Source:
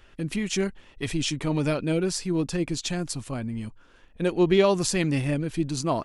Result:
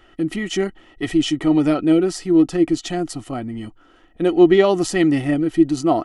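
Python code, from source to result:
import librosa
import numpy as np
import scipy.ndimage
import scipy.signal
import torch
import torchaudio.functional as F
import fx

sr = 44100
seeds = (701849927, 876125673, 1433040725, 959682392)

y = fx.peak_eq(x, sr, hz=730.0, db=14.0, octaves=0.32)
y = fx.small_body(y, sr, hz=(320.0, 1300.0, 1900.0, 3000.0), ring_ms=45, db=15)
y = y * 10.0 ** (-1.0 / 20.0)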